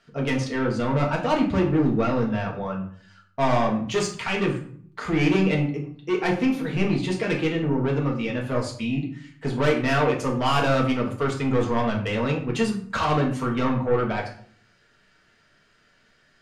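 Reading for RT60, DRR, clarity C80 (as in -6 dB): 0.55 s, -1.0 dB, 12.0 dB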